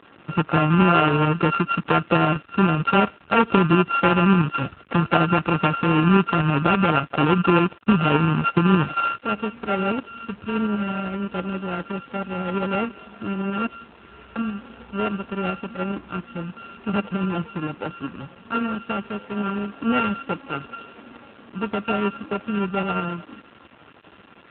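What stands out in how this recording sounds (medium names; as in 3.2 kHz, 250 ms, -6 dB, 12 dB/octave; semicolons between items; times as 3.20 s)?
a buzz of ramps at a fixed pitch in blocks of 32 samples; tremolo saw up 12 Hz, depth 35%; a quantiser's noise floor 8-bit, dither none; AMR-NB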